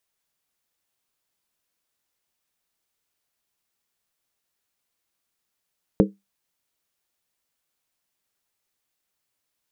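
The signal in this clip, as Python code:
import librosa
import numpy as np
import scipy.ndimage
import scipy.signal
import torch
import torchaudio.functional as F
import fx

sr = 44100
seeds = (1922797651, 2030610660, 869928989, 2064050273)

y = fx.strike_skin(sr, length_s=0.63, level_db=-11.5, hz=198.0, decay_s=0.2, tilt_db=2, modes=5)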